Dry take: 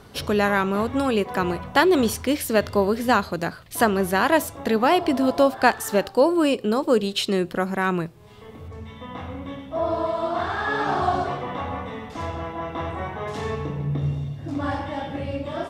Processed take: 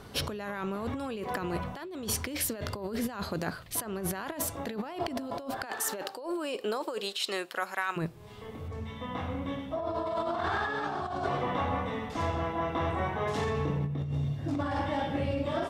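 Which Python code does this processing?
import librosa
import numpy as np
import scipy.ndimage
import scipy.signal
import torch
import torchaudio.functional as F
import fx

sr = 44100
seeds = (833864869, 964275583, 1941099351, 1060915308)

y = fx.highpass(x, sr, hz=fx.line((5.65, 260.0), (7.96, 1100.0)), slope=12, at=(5.65, 7.96), fade=0.02)
y = fx.over_compress(y, sr, threshold_db=-28.0, ratio=-1.0)
y = y * librosa.db_to_amplitude(-5.0)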